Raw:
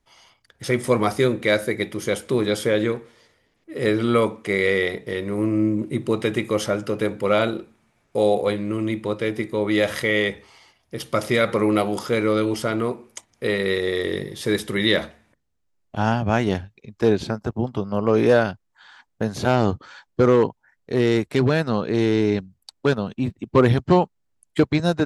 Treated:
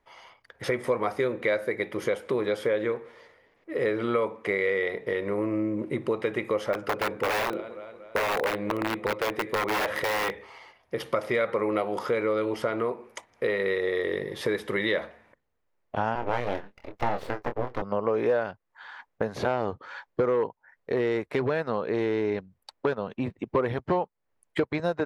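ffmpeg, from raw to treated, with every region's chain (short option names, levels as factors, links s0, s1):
-filter_complex "[0:a]asettb=1/sr,asplit=3[s0][s1][s2];[s0]atrim=end=6.734[s3];[s1]atrim=start=6.73:end=10.31,asetpts=PTS-STARTPTS,afade=t=in:d=0.004:c=qsin,afade=t=out:st=3.576:d=0.004:c=qsin,aecho=1:1:233|466|699:0.0668|0.0341|0.0174,atrim=end_sample=157878,aeval=exprs='(mod(6.68*val(0)+1,2)-1)/6.68':c=same[s4];[s2]atrim=start=10.306[s5];[s3][s4]acrossfade=d=0.004:c1=hsin:c2=qsin[s6];[s6][s5]acrossfade=d=0.004:c1=qsin:c2=hsin,asettb=1/sr,asplit=3[s7][s8][s9];[s7]atrim=end=16.154[s10];[s8]atrim=start=16.15:end=17.82,asetpts=PTS-STARTPTS,afade=t=in:d=0.004:c=qsin,afade=t=out:st=1.666:d=0.004:c=qsin,aeval=exprs='abs(val(0))':c=same,asplit=2[s11][s12];[s12]adelay=25,volume=0.447[s13];[s11][s13]amix=inputs=2:normalize=0,atrim=end_sample=73647[s14];[s9]atrim=start=17.816[s15];[s10][s14]acrossfade=d=0.004:c1=hsin:c2=qsin[s16];[s16][s15]acrossfade=d=0.004:c1=qsin:c2=hsin,equalizer=f=500:t=o:w=1:g=10,equalizer=f=1000:t=o:w=1:g=8,equalizer=f=2000:t=o:w=1:g=8,equalizer=f=8000:t=o:w=1:g=-6,acompressor=threshold=0.0794:ratio=3,volume=0.596"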